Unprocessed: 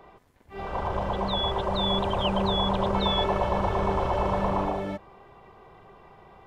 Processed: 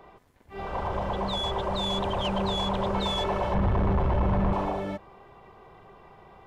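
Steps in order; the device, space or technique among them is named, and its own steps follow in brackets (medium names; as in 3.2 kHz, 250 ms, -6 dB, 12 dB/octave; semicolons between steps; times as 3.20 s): 3.54–4.53 s: tone controls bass +12 dB, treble -10 dB; saturation between pre-emphasis and de-emphasis (treble shelf 2.7 kHz +10.5 dB; saturation -19.5 dBFS, distortion -10 dB; treble shelf 2.7 kHz -10.5 dB)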